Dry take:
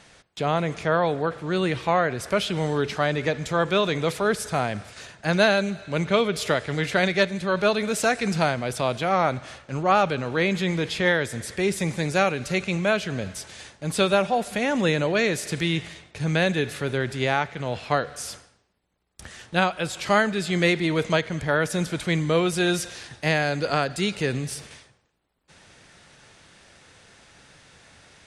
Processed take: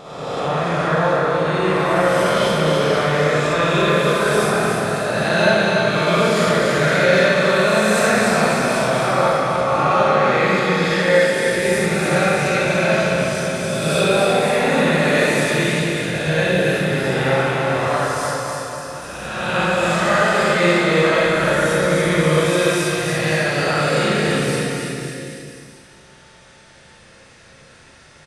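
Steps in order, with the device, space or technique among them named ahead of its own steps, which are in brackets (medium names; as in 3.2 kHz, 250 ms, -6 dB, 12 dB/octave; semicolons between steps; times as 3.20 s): reverse spectral sustain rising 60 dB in 1.76 s; 10.84–11.45 s: high-pass 280 Hz 12 dB/octave; bouncing-ball echo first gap 290 ms, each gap 0.9×, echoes 5; bathroom (reverberation RT60 0.75 s, pre-delay 44 ms, DRR -4.5 dB); Schroeder reverb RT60 1.8 s, combs from 26 ms, DRR 4.5 dB; trim -6.5 dB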